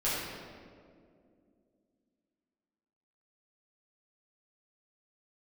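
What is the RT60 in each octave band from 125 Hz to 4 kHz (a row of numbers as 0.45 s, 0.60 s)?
2.6 s, 3.5 s, 2.8 s, 1.9 s, 1.5 s, 1.2 s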